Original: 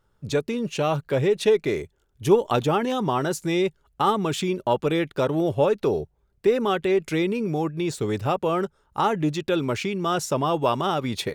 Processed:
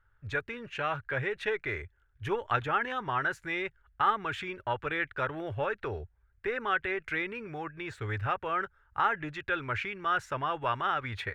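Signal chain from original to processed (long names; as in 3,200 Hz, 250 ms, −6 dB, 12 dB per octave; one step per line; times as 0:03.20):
drawn EQ curve 100 Hz 0 dB, 170 Hz −20 dB, 620 Hz −12 dB, 1,100 Hz −5 dB, 1,600 Hz +7 dB, 4,900 Hz −19 dB, 11,000 Hz −24 dB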